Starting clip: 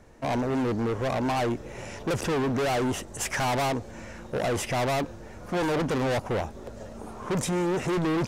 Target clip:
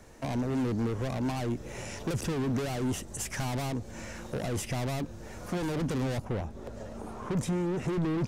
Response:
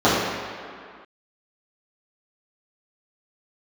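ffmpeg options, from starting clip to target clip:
-filter_complex "[0:a]asetnsamples=n=441:p=0,asendcmd='6.25 highshelf g -2',highshelf=f=3700:g=8.5,acrossover=split=290[s0][s1];[s1]acompressor=threshold=0.01:ratio=2.5[s2];[s0][s2]amix=inputs=2:normalize=0"

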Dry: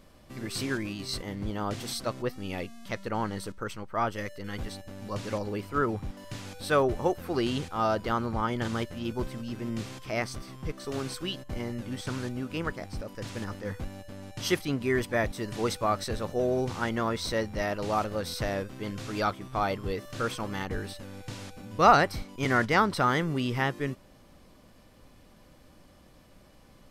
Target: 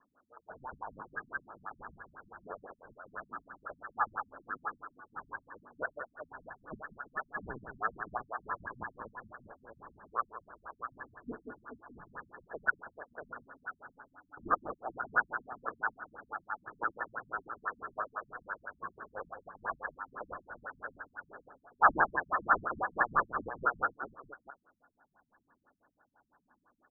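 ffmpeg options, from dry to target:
-filter_complex "[0:a]afftfilt=real='re*pow(10,9/40*sin(2*PI*(1.9*log(max(b,1)*sr/1024/100)/log(2)-(-0.9)*(pts-256)/sr)))':imag='im*pow(10,9/40*sin(2*PI*(1.9*log(max(b,1)*sr/1024/100)/log(2)-(-0.9)*(pts-256)/sr)))':win_size=1024:overlap=0.75,equalizer=f=1000:t=o:w=1.6:g=5.5,aeval=exprs='0.841*(cos(1*acos(clip(val(0)/0.841,-1,1)))-cos(1*PI/2))+0.0335*(cos(2*acos(clip(val(0)/0.841,-1,1)))-cos(2*PI/2))+0.299*(cos(4*acos(clip(val(0)/0.841,-1,1)))-cos(4*PI/2))+0.0188*(cos(6*acos(clip(val(0)/0.841,-1,1)))-cos(6*PI/2))+0.00944*(cos(8*acos(clip(val(0)/0.841,-1,1)))-cos(8*PI/2))':c=same,asplit=2[s0][s1];[s1]aecho=0:1:48|192|437|637:0.2|0.398|0.299|0.398[s2];[s0][s2]amix=inputs=2:normalize=0,adynamicequalizer=threshold=0.01:dfrequency=1700:dqfactor=2.3:tfrequency=1700:tqfactor=2.3:attack=5:release=100:ratio=0.375:range=2.5:mode=boostabove:tftype=bell,acrossover=split=860|2400[s3][s4][s5];[s3]asoftclip=type=tanh:threshold=0.2[s6];[s6][s4][s5]amix=inputs=3:normalize=0,lowpass=f=2700:t=q:w=0.5098,lowpass=f=2700:t=q:w=0.6013,lowpass=f=2700:t=q:w=0.9,lowpass=f=2700:t=q:w=2.563,afreqshift=-3200,afftfilt=real='re*lt(b*sr/1024,230*pow(1800/230,0.5+0.5*sin(2*PI*6*pts/sr)))':imag='im*lt(b*sr/1024,230*pow(1800/230,0.5+0.5*sin(2*PI*6*pts/sr)))':win_size=1024:overlap=0.75"

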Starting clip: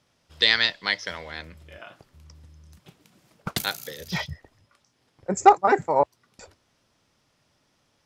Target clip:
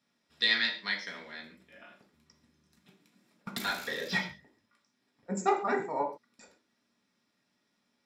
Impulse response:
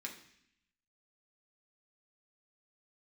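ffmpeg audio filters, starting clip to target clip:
-filter_complex "[0:a]lowshelf=f=150:t=q:w=1.5:g=-8.5,asplit=3[s0][s1][s2];[s0]afade=t=out:st=3.6:d=0.02[s3];[s1]asplit=2[s4][s5];[s5]highpass=f=720:p=1,volume=20,asoftclip=type=tanh:threshold=0.355[s6];[s4][s6]amix=inputs=2:normalize=0,lowpass=f=1600:p=1,volume=0.501,afade=t=in:st=3.6:d=0.02,afade=t=out:st=4.17:d=0.02[s7];[s2]afade=t=in:st=4.17:d=0.02[s8];[s3][s7][s8]amix=inputs=3:normalize=0[s9];[1:a]atrim=start_sample=2205,afade=t=out:st=0.19:d=0.01,atrim=end_sample=8820[s10];[s9][s10]afir=irnorm=-1:irlink=0,volume=0.473"

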